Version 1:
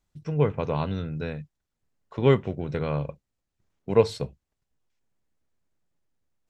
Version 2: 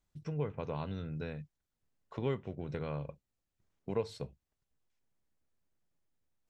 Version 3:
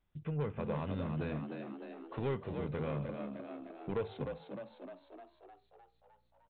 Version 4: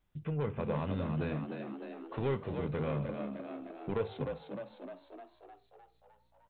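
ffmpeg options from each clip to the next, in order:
-af "acompressor=threshold=-34dB:ratio=2,volume=-4.5dB"
-filter_complex "[0:a]aresample=8000,asoftclip=type=tanh:threshold=-31.5dB,aresample=44100,asplit=9[a][b][c][d][e][f][g][h][i];[b]adelay=305,afreqshift=59,volume=-6.5dB[j];[c]adelay=610,afreqshift=118,volume=-10.8dB[k];[d]adelay=915,afreqshift=177,volume=-15.1dB[l];[e]adelay=1220,afreqshift=236,volume=-19.4dB[m];[f]adelay=1525,afreqshift=295,volume=-23.7dB[n];[g]adelay=1830,afreqshift=354,volume=-28dB[o];[h]adelay=2135,afreqshift=413,volume=-32.3dB[p];[i]adelay=2440,afreqshift=472,volume=-36.6dB[q];[a][j][k][l][m][n][o][p][q]amix=inputs=9:normalize=0,volume=2.5dB"
-af "flanger=delay=6.4:depth=5.9:regen=-81:speed=0.73:shape=triangular,volume=7dB"

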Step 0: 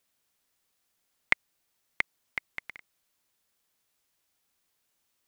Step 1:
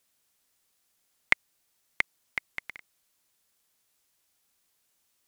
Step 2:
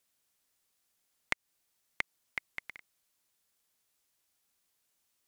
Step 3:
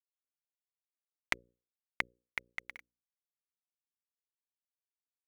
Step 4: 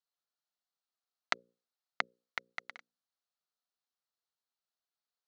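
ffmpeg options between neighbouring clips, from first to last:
-af "equalizer=f=9.6k:t=o:w=2:g=4,volume=1dB"
-af "acompressor=threshold=-23dB:ratio=6,volume=-4.5dB"
-af "acrusher=bits=9:mix=0:aa=0.000001,bandreject=f=60:t=h:w=6,bandreject=f=120:t=h:w=6,bandreject=f=180:t=h:w=6,bandreject=f=240:t=h:w=6,bandreject=f=300:t=h:w=6,bandreject=f=360:t=h:w=6,bandreject=f=420:t=h:w=6,bandreject=f=480:t=h:w=6,bandreject=f=540:t=h:w=6,aphaser=in_gain=1:out_gain=1:delay=4.4:decay=0.27:speed=2:type=triangular"
-af "highpass=f=180:w=0.5412,highpass=f=180:w=1.3066,equalizer=f=320:t=q:w=4:g=-9,equalizer=f=720:t=q:w=4:g=6,equalizer=f=1.3k:t=q:w=4:g=7,equalizer=f=2.3k:t=q:w=4:g=-8,equalizer=f=4.2k:t=q:w=4:g=7,lowpass=f=6.6k:w=0.5412,lowpass=f=6.6k:w=1.3066,volume=1.5dB"

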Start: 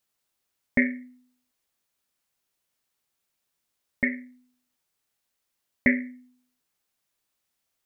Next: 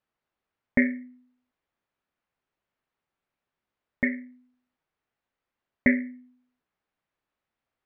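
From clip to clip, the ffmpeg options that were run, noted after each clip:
-af "lowpass=2k,volume=1.5dB"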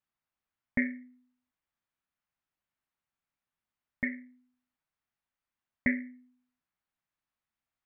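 -af "equalizer=f=450:t=o:w=1:g=-9,volume=-5.5dB"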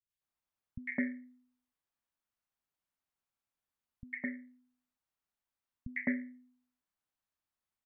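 -filter_complex "[0:a]acrossover=split=160|2000[a][b][c];[c]adelay=100[d];[b]adelay=210[e];[a][e][d]amix=inputs=3:normalize=0,volume=-2dB"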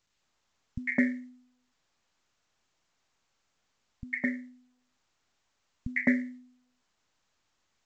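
-af "volume=8dB" -ar 16000 -c:a pcm_mulaw

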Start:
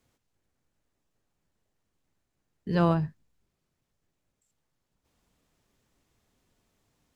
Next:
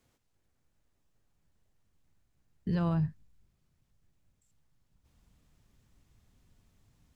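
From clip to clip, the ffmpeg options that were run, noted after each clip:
-af "asubboost=boost=3.5:cutoff=200,alimiter=limit=-23dB:level=0:latency=1:release=133"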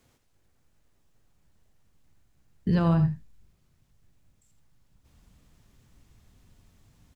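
-af "aecho=1:1:83:0.266,volume=7dB"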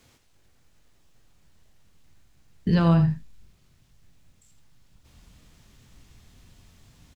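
-filter_complex "[0:a]equalizer=f=3.8k:w=0.55:g=5,asplit=2[a][b];[b]alimiter=level_in=1dB:limit=-24dB:level=0:latency=1,volume=-1dB,volume=-3dB[c];[a][c]amix=inputs=2:normalize=0,asplit=2[d][e];[e]adelay=24,volume=-11dB[f];[d][f]amix=inputs=2:normalize=0"

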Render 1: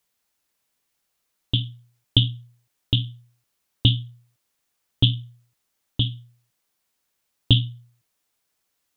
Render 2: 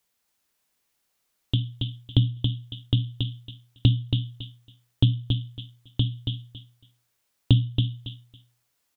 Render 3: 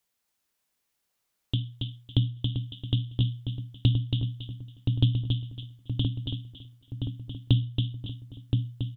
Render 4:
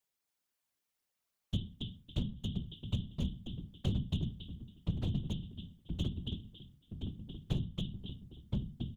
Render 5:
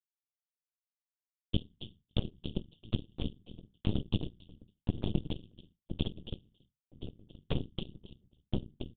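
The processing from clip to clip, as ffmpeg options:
-filter_complex "[0:a]aecho=1:1:277|554|831:0.501|0.0902|0.0162,acrossover=split=770[a][b];[b]acompressor=threshold=-31dB:ratio=6[c];[a][c]amix=inputs=2:normalize=0"
-filter_complex "[0:a]asplit=2[a][b];[b]adelay=1023,lowpass=f=1.7k:p=1,volume=-4dB,asplit=2[c][d];[d]adelay=1023,lowpass=f=1.7k:p=1,volume=0.5,asplit=2[e][f];[f]adelay=1023,lowpass=f=1.7k:p=1,volume=0.5,asplit=2[g][h];[h]adelay=1023,lowpass=f=1.7k:p=1,volume=0.5,asplit=2[i][j];[j]adelay=1023,lowpass=f=1.7k:p=1,volume=0.5,asplit=2[k][l];[l]adelay=1023,lowpass=f=1.7k:p=1,volume=0.5[m];[a][c][e][g][i][k][m]amix=inputs=7:normalize=0,volume=-4dB"
-af "asoftclip=type=hard:threshold=-21.5dB,afftfilt=real='hypot(re,im)*cos(2*PI*random(0))':imag='hypot(re,im)*sin(2*PI*random(1))':win_size=512:overlap=0.75,volume=-1.5dB"
-af "aeval=exprs='0.112*(cos(1*acos(clip(val(0)/0.112,-1,1)))-cos(1*PI/2))+0.00447*(cos(3*acos(clip(val(0)/0.112,-1,1)))-cos(3*PI/2))+0.0398*(cos(4*acos(clip(val(0)/0.112,-1,1)))-cos(4*PI/2))+0.0112*(cos(7*acos(clip(val(0)/0.112,-1,1)))-cos(7*PI/2))':c=same,aresample=8000,aresample=44100,agate=range=-33dB:threshold=-58dB:ratio=3:detection=peak,volume=1dB"

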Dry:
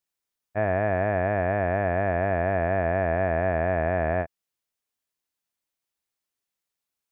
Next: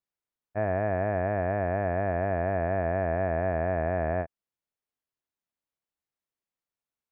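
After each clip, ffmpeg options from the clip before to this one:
-af "highshelf=f=2.6k:g=-11.5,volume=-2.5dB"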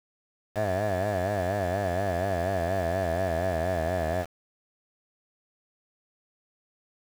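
-af "aeval=exprs='val(0)*gte(abs(val(0)),0.015)':c=same"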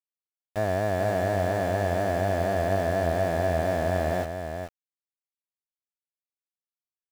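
-af "aecho=1:1:431:0.447,volume=1.5dB"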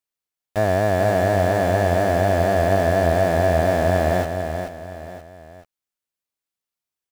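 -af "aecho=1:1:960:0.158,volume=7dB"

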